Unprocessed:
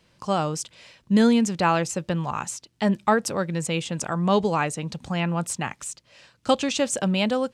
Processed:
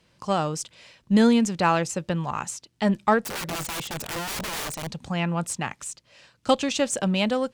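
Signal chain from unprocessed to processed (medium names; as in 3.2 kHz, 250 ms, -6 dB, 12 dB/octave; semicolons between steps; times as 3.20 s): 3.22–4.87 s: integer overflow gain 25 dB; Chebyshev shaper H 6 -36 dB, 7 -35 dB, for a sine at -7.5 dBFS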